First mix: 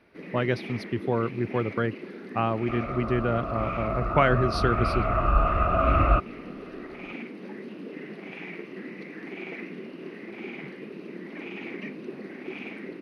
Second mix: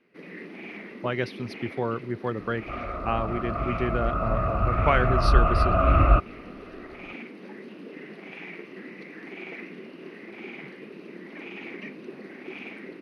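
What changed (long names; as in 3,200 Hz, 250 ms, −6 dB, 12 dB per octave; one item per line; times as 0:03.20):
speech: entry +0.70 s
second sound: add low-shelf EQ 370 Hz +8.5 dB
master: add low-shelf EQ 440 Hz −4.5 dB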